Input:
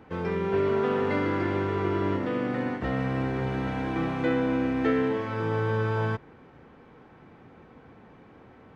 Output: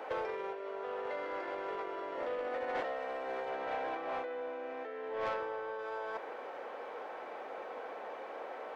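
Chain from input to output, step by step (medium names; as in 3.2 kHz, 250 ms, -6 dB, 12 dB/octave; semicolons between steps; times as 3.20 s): 3.49–5.79 s: low-pass 3.7 kHz 6 dB/octave; compressor with a negative ratio -36 dBFS, ratio -1; ladder high-pass 490 Hz, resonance 50%; saturation -39 dBFS, distortion -17 dB; trim +9.5 dB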